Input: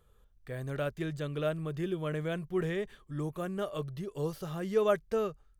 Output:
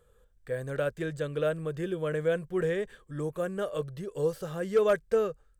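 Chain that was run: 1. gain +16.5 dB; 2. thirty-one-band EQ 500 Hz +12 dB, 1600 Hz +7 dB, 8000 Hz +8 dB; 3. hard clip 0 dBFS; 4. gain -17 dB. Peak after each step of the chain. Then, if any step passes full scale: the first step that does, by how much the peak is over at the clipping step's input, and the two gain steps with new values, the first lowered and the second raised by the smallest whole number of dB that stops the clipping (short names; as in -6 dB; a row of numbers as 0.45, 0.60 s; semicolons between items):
+1.0, +5.5, 0.0, -17.0 dBFS; step 1, 5.5 dB; step 1 +10.5 dB, step 4 -11 dB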